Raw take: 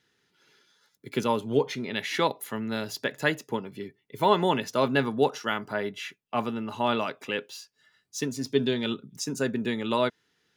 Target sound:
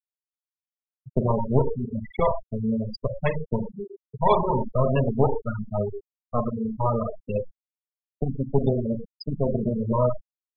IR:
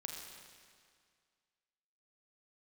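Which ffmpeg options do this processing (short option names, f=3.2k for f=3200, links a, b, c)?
-filter_complex "[0:a]aeval=exprs='0.501*(cos(1*acos(clip(val(0)/0.501,-1,1)))-cos(1*PI/2))+0.00631*(cos(2*acos(clip(val(0)/0.501,-1,1)))-cos(2*PI/2))+0.00631*(cos(6*acos(clip(val(0)/0.501,-1,1)))-cos(6*PI/2))+0.01*(cos(7*acos(clip(val(0)/0.501,-1,1)))-cos(7*PI/2))+0.1*(cos(8*acos(clip(val(0)/0.501,-1,1)))-cos(8*PI/2))':c=same,equalizer=f=125:t=o:w=0.33:g=5,equalizer=f=315:t=o:w=0.33:g=-9,equalizer=f=800:t=o:w=0.33:g=-4,equalizer=f=1.6k:t=o:w=0.33:g=-11,equalizer=f=5k:t=o:w=0.33:g=5,equalizer=f=10k:t=o:w=0.33:g=-10,acrossover=split=530|2400[a][b][c];[c]acrusher=bits=4:dc=4:mix=0:aa=0.000001[d];[a][b][d]amix=inputs=3:normalize=0,aecho=1:1:37|58:0.266|0.211,asplit=2[e][f];[f]acompressor=threshold=-30dB:ratio=12,volume=1dB[g];[e][g]amix=inputs=2:normalize=0[h];[1:a]atrim=start_sample=2205,atrim=end_sample=6174[i];[h][i]afir=irnorm=-1:irlink=0,afftfilt=real='re*gte(hypot(re,im),0.112)':imag='im*gte(hypot(re,im),0.112)':win_size=1024:overlap=0.75,volume=4.5dB"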